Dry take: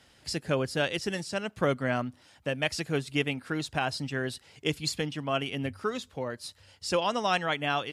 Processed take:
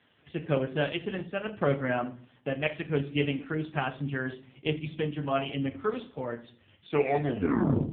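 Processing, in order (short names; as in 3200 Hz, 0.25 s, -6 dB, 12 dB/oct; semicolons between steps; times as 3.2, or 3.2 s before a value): tape stop at the end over 1.13 s; shoebox room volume 54 m³, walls mixed, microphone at 0.35 m; AMR-NB 5.15 kbps 8000 Hz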